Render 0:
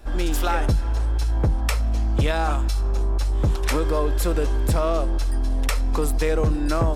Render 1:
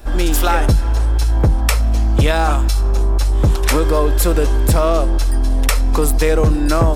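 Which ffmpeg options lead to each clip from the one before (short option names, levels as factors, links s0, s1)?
-af "highshelf=f=9900:g=7.5,volume=2.24"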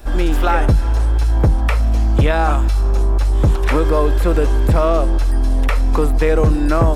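-filter_complex "[0:a]acrossover=split=2900[s0][s1];[s1]acompressor=threshold=0.0126:ratio=4:attack=1:release=60[s2];[s0][s2]amix=inputs=2:normalize=0"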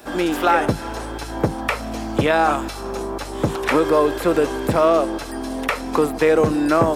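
-af "highpass=200,volume=1.19"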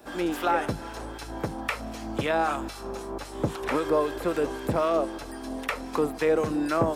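-filter_complex "[0:a]acrossover=split=1100[s0][s1];[s0]aeval=exprs='val(0)*(1-0.5/2+0.5/2*cos(2*PI*3.8*n/s))':c=same[s2];[s1]aeval=exprs='val(0)*(1-0.5/2-0.5/2*cos(2*PI*3.8*n/s))':c=same[s3];[s2][s3]amix=inputs=2:normalize=0,volume=0.501"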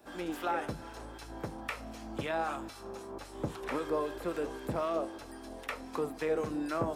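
-af "flanger=delay=9.5:depth=8.1:regen=-75:speed=0.36:shape=sinusoidal,volume=0.631"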